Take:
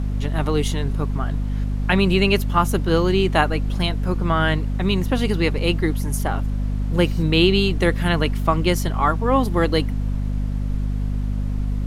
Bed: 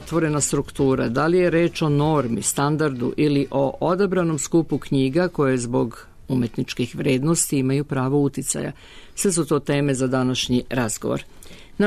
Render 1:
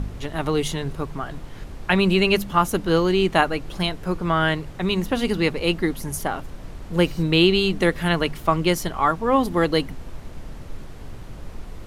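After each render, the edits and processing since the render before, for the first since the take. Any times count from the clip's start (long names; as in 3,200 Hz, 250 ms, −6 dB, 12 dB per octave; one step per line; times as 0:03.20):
hum removal 50 Hz, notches 5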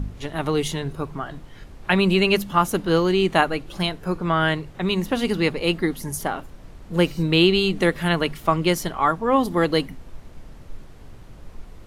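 noise reduction from a noise print 6 dB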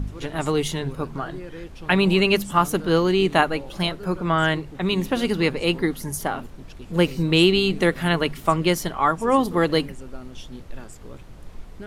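mix in bed −20 dB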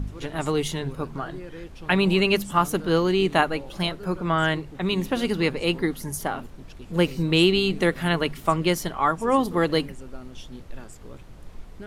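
level −2 dB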